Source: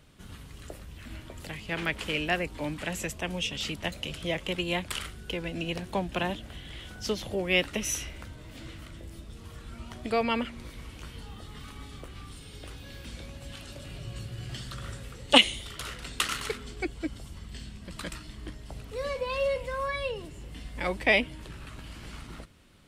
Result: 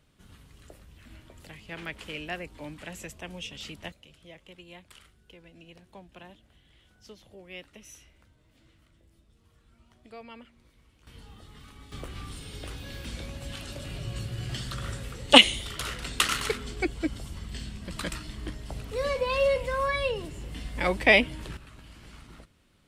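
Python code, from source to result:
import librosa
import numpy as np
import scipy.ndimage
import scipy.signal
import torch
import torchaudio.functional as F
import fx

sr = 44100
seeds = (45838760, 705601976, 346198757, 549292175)

y = fx.gain(x, sr, db=fx.steps((0.0, -7.5), (3.92, -18.5), (11.07, -6.0), (11.92, 4.0), (21.57, -6.0)))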